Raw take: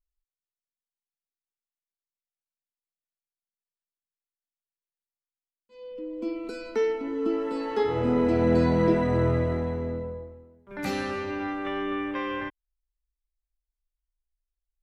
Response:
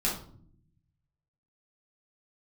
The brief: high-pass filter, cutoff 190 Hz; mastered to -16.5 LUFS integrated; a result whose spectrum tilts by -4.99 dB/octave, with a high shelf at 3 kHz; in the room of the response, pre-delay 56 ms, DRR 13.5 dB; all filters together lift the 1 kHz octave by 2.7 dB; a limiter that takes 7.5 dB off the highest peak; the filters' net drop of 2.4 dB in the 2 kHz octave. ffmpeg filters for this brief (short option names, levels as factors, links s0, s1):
-filter_complex "[0:a]highpass=190,equalizer=f=1000:t=o:g=4,equalizer=f=2000:t=o:g=-6,highshelf=f=3000:g=5,alimiter=limit=0.119:level=0:latency=1,asplit=2[s0][s1];[1:a]atrim=start_sample=2205,adelay=56[s2];[s1][s2]afir=irnorm=-1:irlink=0,volume=0.0841[s3];[s0][s3]amix=inputs=2:normalize=0,volume=4.47"